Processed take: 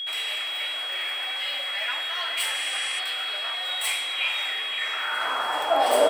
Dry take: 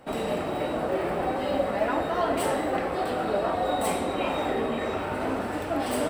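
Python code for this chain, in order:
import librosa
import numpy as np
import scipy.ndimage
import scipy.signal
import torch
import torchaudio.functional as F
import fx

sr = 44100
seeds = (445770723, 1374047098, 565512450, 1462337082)

y = fx.spec_repair(x, sr, seeds[0], start_s=2.56, length_s=0.41, low_hz=1800.0, high_hz=11000.0, source='before')
y = y + 10.0 ** (-38.0 / 20.0) * np.sin(2.0 * np.pi * 3300.0 * np.arange(len(y)) / sr)
y = fx.filter_sweep_highpass(y, sr, from_hz=2300.0, to_hz=530.0, start_s=4.75, end_s=6.09, q=2.0)
y = y * 10.0 ** (5.0 / 20.0)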